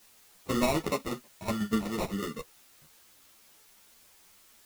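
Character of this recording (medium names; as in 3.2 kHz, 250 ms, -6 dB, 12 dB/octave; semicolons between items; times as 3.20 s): aliases and images of a low sample rate 1.6 kHz, jitter 0%; tremolo saw down 8.1 Hz, depth 65%; a quantiser's noise floor 10-bit, dither triangular; a shimmering, thickened sound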